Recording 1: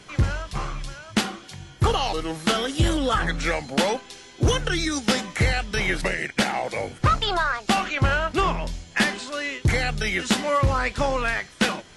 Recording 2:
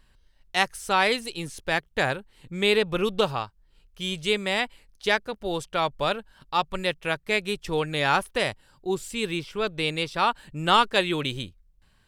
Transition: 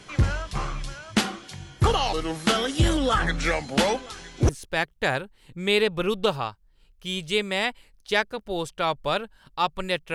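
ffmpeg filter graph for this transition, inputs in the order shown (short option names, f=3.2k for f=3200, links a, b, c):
-filter_complex "[0:a]asplit=3[a][b][c];[a]afade=t=out:st=3.67:d=0.02[d];[b]aecho=1:1:969:0.0944,afade=t=in:st=3.67:d=0.02,afade=t=out:st=4.49:d=0.02[e];[c]afade=t=in:st=4.49:d=0.02[f];[d][e][f]amix=inputs=3:normalize=0,apad=whole_dur=10.14,atrim=end=10.14,atrim=end=4.492[g];[1:a]atrim=start=1.438:end=7.09[h];[g][h]acrossfade=d=0.004:c1=hsin:c2=hsin"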